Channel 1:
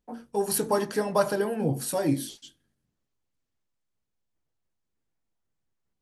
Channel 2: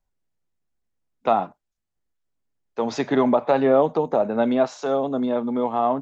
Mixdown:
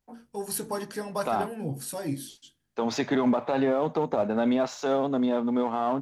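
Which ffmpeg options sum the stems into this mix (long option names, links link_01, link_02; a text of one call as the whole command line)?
ffmpeg -i stem1.wav -i stem2.wav -filter_complex "[0:a]volume=-4dB[link_01];[1:a]aeval=exprs='if(lt(val(0),0),0.708*val(0),val(0))':channel_layout=same,highpass=87,volume=2.5dB[link_02];[link_01][link_02]amix=inputs=2:normalize=0,equalizer=frequency=530:width=0.57:gain=-4,alimiter=limit=-16dB:level=0:latency=1:release=19" out.wav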